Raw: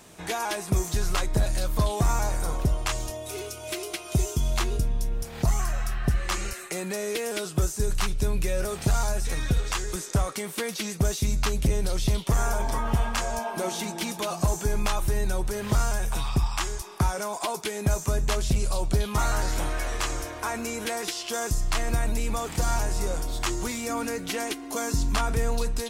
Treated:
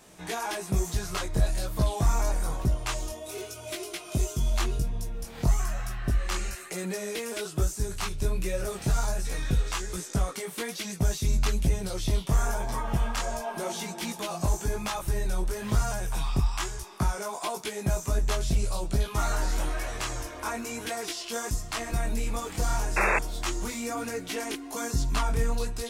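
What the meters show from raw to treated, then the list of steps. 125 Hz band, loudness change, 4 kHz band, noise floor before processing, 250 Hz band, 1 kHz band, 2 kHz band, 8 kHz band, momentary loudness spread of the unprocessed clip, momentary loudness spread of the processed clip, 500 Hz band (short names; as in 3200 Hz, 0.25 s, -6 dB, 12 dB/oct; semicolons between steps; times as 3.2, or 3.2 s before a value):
-2.0 dB, -2.0 dB, -3.0 dB, -39 dBFS, -2.5 dB, -2.5 dB, -1.0 dB, -3.0 dB, 5 LU, 6 LU, -3.0 dB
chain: chorus voices 2, 1.1 Hz, delay 19 ms, depth 3.4 ms; painted sound noise, 22.96–23.19, 320–2700 Hz -24 dBFS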